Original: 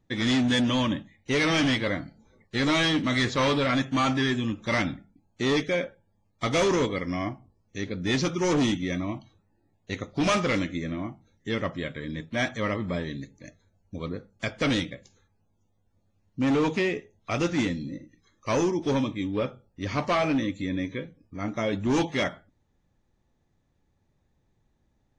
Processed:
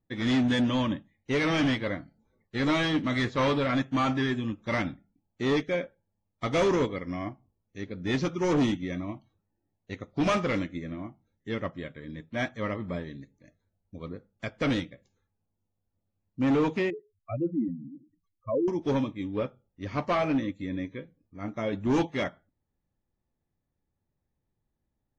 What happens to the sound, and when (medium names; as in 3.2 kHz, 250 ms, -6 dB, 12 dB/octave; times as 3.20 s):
16.90–18.68 s: spectral contrast enhancement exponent 3.7
whole clip: treble shelf 3.5 kHz -10 dB; upward expansion 1.5:1, over -43 dBFS